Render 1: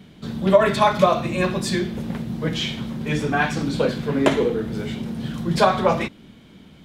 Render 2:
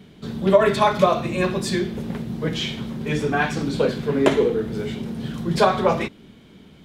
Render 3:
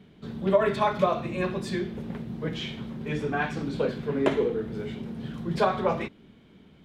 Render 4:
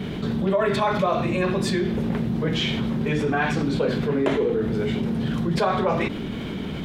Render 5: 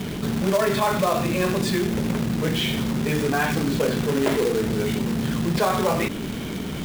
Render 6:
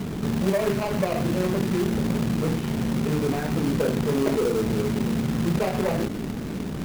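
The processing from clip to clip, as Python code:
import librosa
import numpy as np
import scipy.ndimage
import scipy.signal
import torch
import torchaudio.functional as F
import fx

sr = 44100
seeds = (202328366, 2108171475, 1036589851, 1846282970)

y1 = fx.peak_eq(x, sr, hz=410.0, db=6.0, octaves=0.26)
y1 = F.gain(torch.from_numpy(y1), -1.0).numpy()
y2 = fx.bass_treble(y1, sr, bass_db=0, treble_db=-8)
y2 = F.gain(torch.from_numpy(y2), -6.5).numpy()
y3 = fx.env_flatten(y2, sr, amount_pct=70)
y3 = F.gain(torch.from_numpy(y3), -2.5).numpy()
y4 = fx.quant_companded(y3, sr, bits=4)
y5 = scipy.signal.medfilt(y4, 41)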